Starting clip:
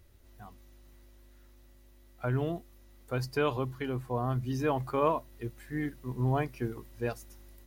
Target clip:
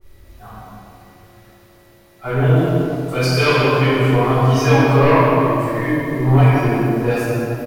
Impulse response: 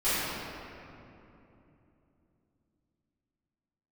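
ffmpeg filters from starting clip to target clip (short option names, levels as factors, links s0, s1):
-filter_complex "[0:a]bandreject=f=50:t=h:w=6,bandreject=f=100:t=h:w=6,bandreject=f=150:t=h:w=6,bandreject=f=200:t=h:w=6,bandreject=f=250:t=h:w=6,bandreject=f=300:t=h:w=6,aecho=1:1:174:0.266,aeval=exprs='0.224*sin(PI/2*2.24*val(0)/0.224)':c=same,asettb=1/sr,asplit=3[s0][s1][s2];[s0]atrim=end=2.554[s3];[s1]atrim=start=2.55:end=4.71,asetpts=PTS-STARTPTS,afade=t=in:d=0.004:c=qsin,afade=t=out:st=2.156:d=0.004:c=qsin,equalizer=f=5100:t=o:w=2.5:g=6[s4];[s2]atrim=start=4.706[s5];[s3][s4]acrossfade=d=0.004:c1=hsin:c2=qsin[s6];[s6][s5]acrossfade=d=0.004:c1=qsin:c2=hsin[s7];[1:a]atrim=start_sample=2205[s8];[s7][s8]afir=irnorm=-1:irlink=0,adynamicequalizer=threshold=0.0501:dfrequency=1800:dqfactor=0.7:tfrequency=1800:tqfactor=0.7:attack=5:release=100:ratio=0.375:range=1.5:mode=boostabove:tftype=highshelf,volume=0.422"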